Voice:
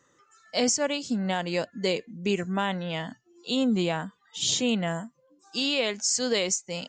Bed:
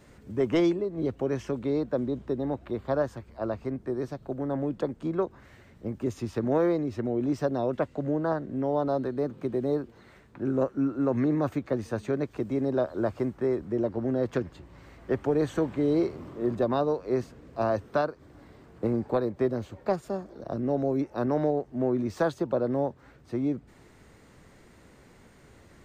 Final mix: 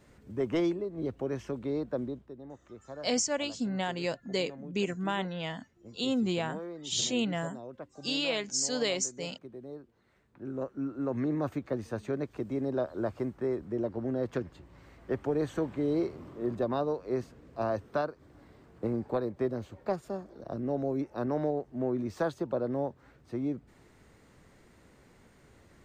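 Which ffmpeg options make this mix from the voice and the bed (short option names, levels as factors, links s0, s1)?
-filter_complex "[0:a]adelay=2500,volume=0.596[s0];[1:a]volume=2.24,afade=t=out:st=2.04:d=0.23:silence=0.266073,afade=t=in:st=10.02:d=1.42:silence=0.251189[s1];[s0][s1]amix=inputs=2:normalize=0"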